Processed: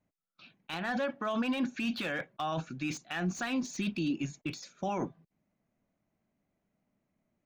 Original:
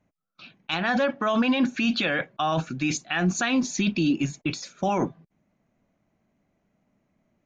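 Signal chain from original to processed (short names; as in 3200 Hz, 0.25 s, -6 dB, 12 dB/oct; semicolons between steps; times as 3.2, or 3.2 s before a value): slew limiter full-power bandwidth 160 Hz; gain -9 dB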